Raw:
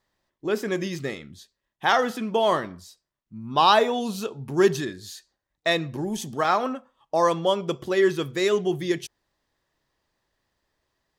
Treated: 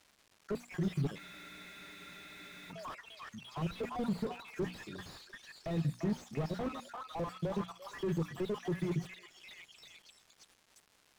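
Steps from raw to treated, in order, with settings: random holes in the spectrogram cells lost 58%; peaking EQ 160 Hz +14.5 dB 0.48 oct; level held to a coarse grid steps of 15 dB; repeats whose band climbs or falls 345 ms, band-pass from 1.2 kHz, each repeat 0.7 oct, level -5 dB; gate with hold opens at -54 dBFS; treble shelf 2.9 kHz +10.5 dB; hum notches 60/120/180/240/300 Hz; crackle 430 per s -44 dBFS; spectral freeze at 1.20 s, 1.51 s; slew-rate limiter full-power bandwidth 10 Hz

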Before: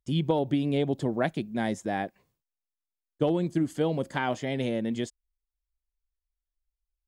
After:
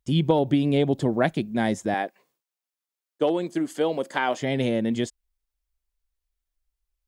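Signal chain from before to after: 1.94–4.40 s: high-pass 350 Hz 12 dB/octave; trim +5 dB

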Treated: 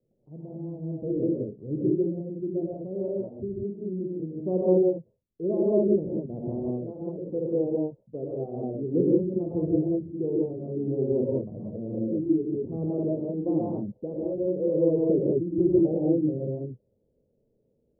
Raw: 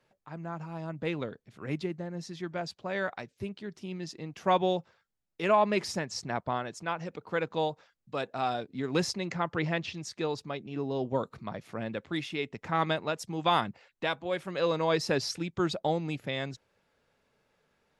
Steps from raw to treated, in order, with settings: dynamic bell 350 Hz, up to +6 dB, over -45 dBFS, Q 2.8; steep low-pass 520 Hz 36 dB/octave; gated-style reverb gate 220 ms rising, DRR -5 dB

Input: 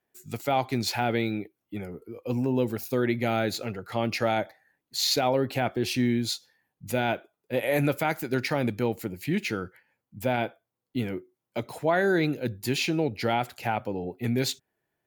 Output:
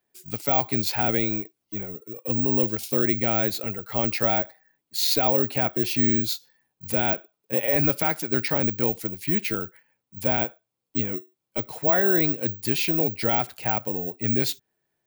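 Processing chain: careless resampling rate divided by 2×, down none, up zero stuff

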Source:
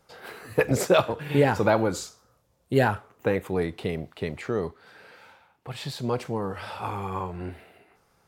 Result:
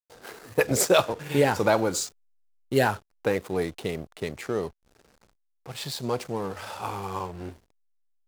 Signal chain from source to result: hysteresis with a dead band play -38.5 dBFS; tone controls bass -4 dB, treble +10 dB

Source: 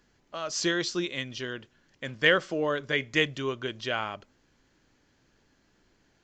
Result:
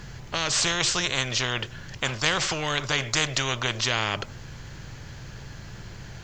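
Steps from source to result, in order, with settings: resonant low shelf 180 Hz +13 dB, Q 3; spectrum-flattening compressor 4:1

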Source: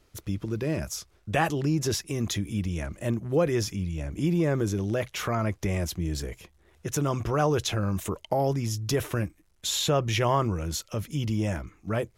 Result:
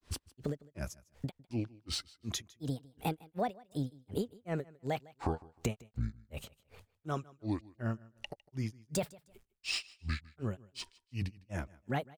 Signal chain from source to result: compression 6:1, threshold -35 dBFS, peak gain reduction 15.5 dB; granulator 212 ms, grains 2.7 per s, spray 51 ms, pitch spread up and down by 7 st; on a send: feedback delay 155 ms, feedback 27%, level -22.5 dB; on the sum: trim +5.5 dB

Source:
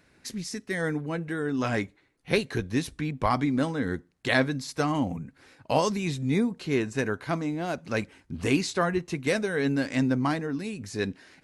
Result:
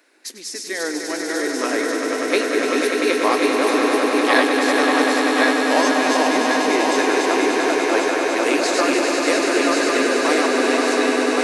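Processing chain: backward echo that repeats 545 ms, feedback 73%, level -2 dB; Chebyshev high-pass 300 Hz, order 4; treble shelf 5.1 kHz +5 dB; on a send: echo with a slow build-up 98 ms, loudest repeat 5, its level -7 dB; on the sum: trim +4.5 dB

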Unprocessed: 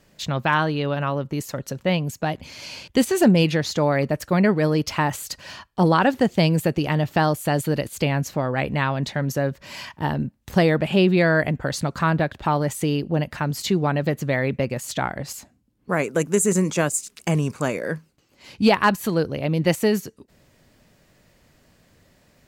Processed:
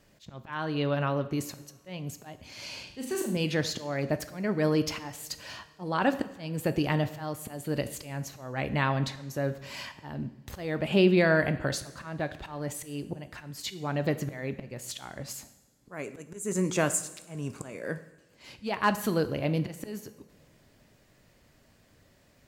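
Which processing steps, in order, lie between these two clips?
slow attack 366 ms; 2.83–3.37 s: flutter echo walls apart 6.6 m, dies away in 0.52 s; two-slope reverb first 0.78 s, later 3.5 s, from -22 dB, DRR 10 dB; trim -4.5 dB

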